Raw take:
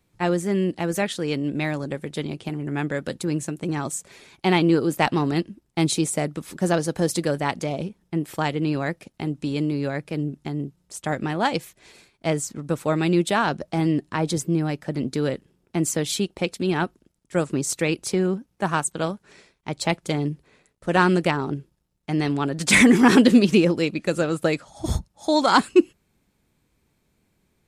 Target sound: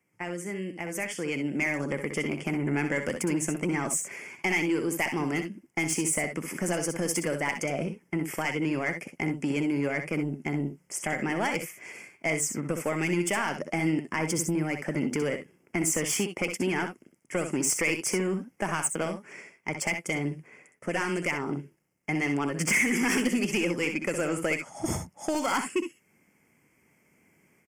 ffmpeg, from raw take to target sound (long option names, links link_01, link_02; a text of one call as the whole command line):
ffmpeg -i in.wav -filter_complex "[0:a]highpass=160,equalizer=frequency=2100:width=5.7:gain=12,acrossover=split=2600[link_01][link_02];[link_01]acompressor=threshold=-27dB:ratio=6[link_03];[link_02]alimiter=limit=-16.5dB:level=0:latency=1:release=108[link_04];[link_03][link_04]amix=inputs=2:normalize=0,dynaudnorm=framelen=890:gausssize=3:maxgain=11.5dB,asoftclip=type=tanh:threshold=-13.5dB,asuperstop=centerf=3900:order=4:qfactor=1.9,aecho=1:1:63|75:0.376|0.178,volume=-6dB" out.wav